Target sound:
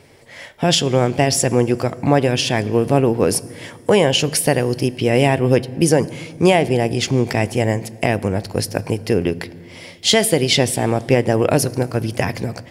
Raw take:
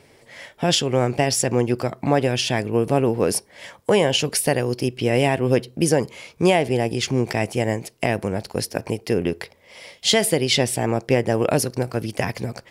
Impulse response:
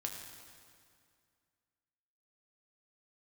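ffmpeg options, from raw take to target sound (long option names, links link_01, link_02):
-filter_complex "[0:a]asplit=2[link_01][link_02];[1:a]atrim=start_sample=2205,lowshelf=frequency=330:gain=11.5[link_03];[link_02][link_03]afir=irnorm=-1:irlink=0,volume=-14.5dB[link_04];[link_01][link_04]amix=inputs=2:normalize=0,volume=2dB"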